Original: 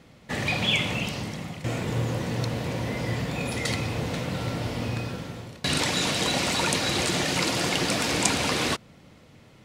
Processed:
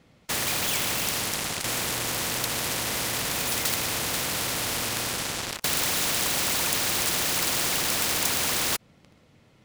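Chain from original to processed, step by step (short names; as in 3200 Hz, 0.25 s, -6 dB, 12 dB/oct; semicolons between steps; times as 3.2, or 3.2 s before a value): sample leveller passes 5; spectral compressor 4:1; gain -5.5 dB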